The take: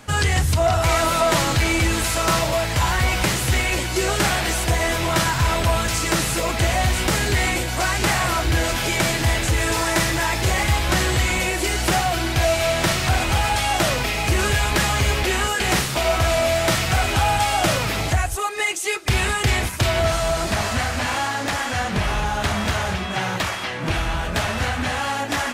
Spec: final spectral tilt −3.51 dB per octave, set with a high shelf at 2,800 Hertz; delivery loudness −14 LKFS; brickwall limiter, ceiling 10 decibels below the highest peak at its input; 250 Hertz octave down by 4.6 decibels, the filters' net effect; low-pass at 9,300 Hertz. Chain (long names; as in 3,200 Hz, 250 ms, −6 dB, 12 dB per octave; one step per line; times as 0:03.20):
low-pass filter 9,300 Hz
parametric band 250 Hz −7.5 dB
high-shelf EQ 2,800 Hz +9 dB
level +7.5 dB
brickwall limiter −6.5 dBFS